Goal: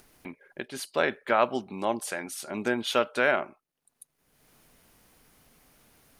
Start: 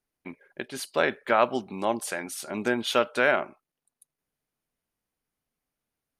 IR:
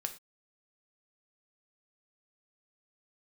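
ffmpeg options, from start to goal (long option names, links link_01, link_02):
-af "acompressor=mode=upward:threshold=-37dB:ratio=2.5,volume=-1.5dB"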